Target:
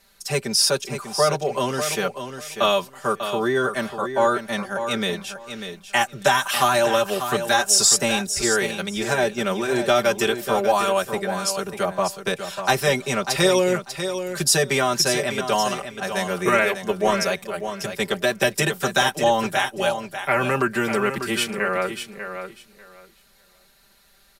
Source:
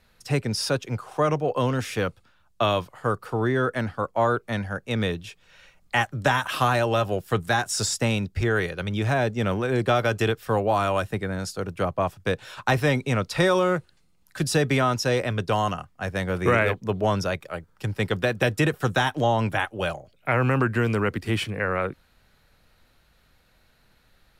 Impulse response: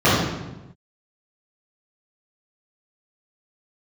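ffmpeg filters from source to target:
-af "bass=frequency=250:gain=-7,treble=frequency=4000:gain=10,aecho=1:1:5.1:0.93,aecho=1:1:594|1188|1782:0.355|0.0639|0.0115"

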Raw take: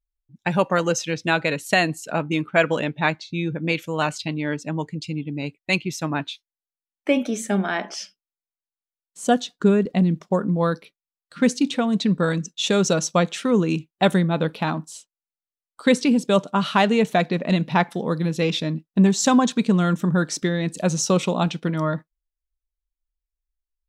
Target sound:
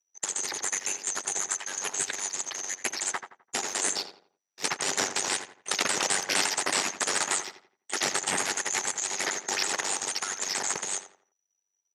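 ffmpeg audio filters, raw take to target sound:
ffmpeg -i in.wav -filter_complex "[0:a]afftfilt=real='real(if(lt(b,272),68*(eq(floor(b/68),0)*2+eq(floor(b/68),1)*3+eq(floor(b/68),2)*0+eq(floor(b/68),3)*1)+mod(b,68),b),0)':imag='imag(if(lt(b,272),68*(eq(floor(b/68),0)*2+eq(floor(b/68),1)*3+eq(floor(b/68),2)*0+eq(floor(b/68),3)*1)+mod(b,68),b),0)':win_size=2048:overlap=0.75,asetrate=88200,aresample=44100,equalizer=frequency=2900:width_type=o:width=1.4:gain=-2.5,acrusher=bits=2:mode=log:mix=0:aa=0.000001,alimiter=limit=-11dB:level=0:latency=1:release=92,aeval=exprs='val(0)*sin(2*PI*48*n/s)':channel_layout=same,highpass=220,equalizer=frequency=390:width_type=q:width=4:gain=7,equalizer=frequency=830:width_type=q:width=4:gain=7,equalizer=frequency=1900:width_type=q:width=4:gain=4,lowpass=frequency=7300:width=0.5412,lowpass=frequency=7300:width=1.3066,dynaudnorm=framelen=250:gausssize=31:maxgain=11.5dB,afftfilt=real='re*lt(hypot(re,im),0.141)':imag='im*lt(hypot(re,im),0.141)':win_size=1024:overlap=0.75,asplit=2[link_01][link_02];[link_02]adelay=85,lowpass=frequency=2600:poles=1,volume=-9dB,asplit=2[link_03][link_04];[link_04]adelay=85,lowpass=frequency=2600:poles=1,volume=0.35,asplit=2[link_05][link_06];[link_06]adelay=85,lowpass=frequency=2600:poles=1,volume=0.35,asplit=2[link_07][link_08];[link_08]adelay=85,lowpass=frequency=2600:poles=1,volume=0.35[link_09];[link_01][link_03][link_05][link_07][link_09]amix=inputs=5:normalize=0,volume=3.5dB" out.wav

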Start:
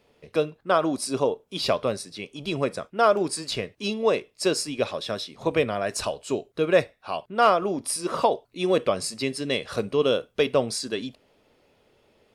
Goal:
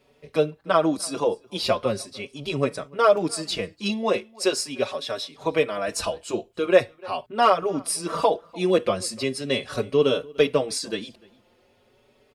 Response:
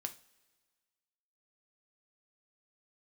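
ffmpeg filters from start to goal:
-filter_complex "[0:a]asettb=1/sr,asplit=3[link_01][link_02][link_03];[link_01]atrim=end=4.174[link_04];[link_02]atrim=start=4.17:end=5.88,asetpts=PTS-STARTPTS,afade=type=in:duration=0.004:curve=qsin,afade=type=out:start_time=1.706:duration=0.004:curve=qsin,lowshelf=frequency=220:gain=-9[link_05];[link_03]atrim=start=5.876[link_06];[link_04][link_05]acrossfade=duration=0.004:curve1=hsin:curve2=qsin[link_07];[link_07][link_06]acrossfade=duration=0.004:curve1=qsin:curve2=hsin,asplit=2[link_08][link_09];[link_09]adelay=297.4,volume=-24dB,highshelf=frequency=4000:gain=-6.69[link_10];[link_08][link_10]amix=inputs=2:normalize=0,asplit=2[link_11][link_12];[link_12]adelay=4.9,afreqshift=0.41[link_13];[link_11][link_13]amix=inputs=2:normalize=1,volume=4dB"

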